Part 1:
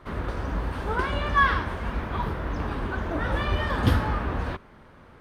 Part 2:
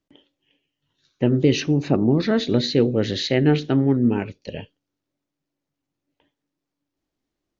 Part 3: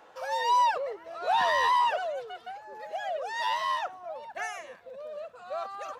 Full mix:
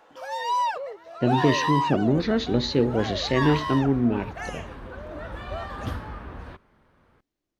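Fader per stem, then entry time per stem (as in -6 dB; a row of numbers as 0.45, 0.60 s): -10.5, -3.5, -1.0 dB; 2.00, 0.00, 0.00 s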